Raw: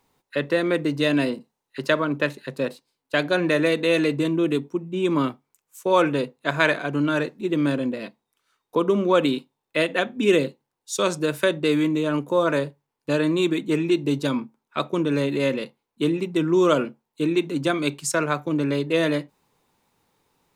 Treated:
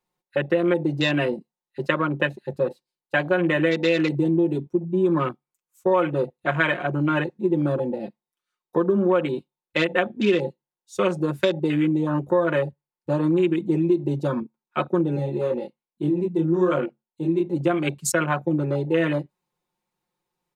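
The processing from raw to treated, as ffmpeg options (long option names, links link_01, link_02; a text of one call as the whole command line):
ffmpeg -i in.wav -filter_complex "[0:a]asettb=1/sr,asplit=3[link_01][link_02][link_03];[link_01]atrim=end=15.164[link_04];[link_02]atrim=start=15.16:end=17.53,asetpts=PTS-STARTPTS,afade=type=in:duration=0.004:curve=qsin,afade=type=out:start_time=2.366:duration=0.004:curve=qsin,flanger=delay=20:depth=5:speed=1.2[link_05];[link_03]atrim=start=17.526[link_06];[link_04][link_05]acrossfade=duration=0.004:curve1=hsin:curve2=qsin[link_07];[link_07][link_06]acrossfade=duration=0.004:curve1=qsin:curve2=hsin,aecho=1:1:5.6:0.92,afwtdn=0.0398,acompressor=threshold=-16dB:ratio=6" out.wav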